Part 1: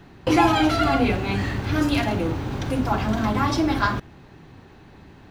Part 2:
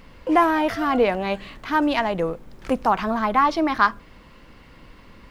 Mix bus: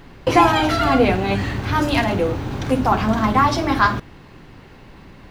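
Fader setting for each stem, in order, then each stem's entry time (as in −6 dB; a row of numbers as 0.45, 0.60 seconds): +2.0, 0.0 decibels; 0.00, 0.00 seconds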